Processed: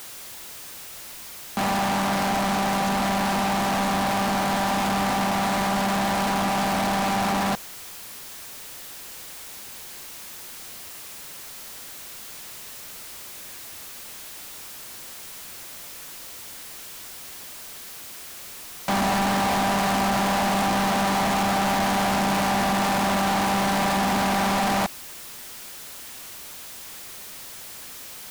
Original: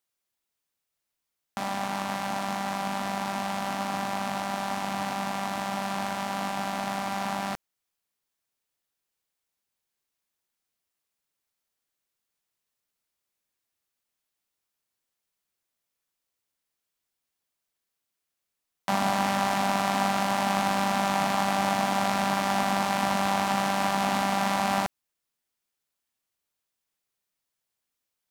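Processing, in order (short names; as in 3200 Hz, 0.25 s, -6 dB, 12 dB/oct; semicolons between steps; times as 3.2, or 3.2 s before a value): power-law curve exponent 0.35; soft clip -16.5 dBFS, distortion -17 dB; gain -2.5 dB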